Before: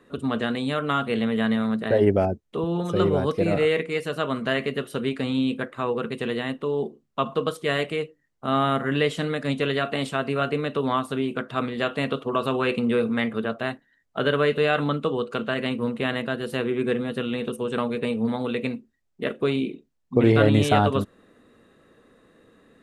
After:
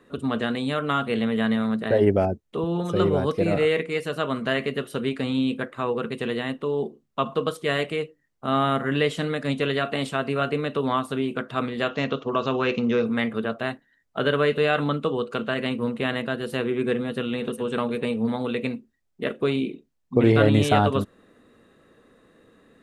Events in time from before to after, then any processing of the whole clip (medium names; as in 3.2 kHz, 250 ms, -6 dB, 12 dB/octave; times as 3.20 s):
11.89–13.06 s: careless resampling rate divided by 3×, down none, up filtered
16.98–17.63 s: echo throw 410 ms, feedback 10%, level -15 dB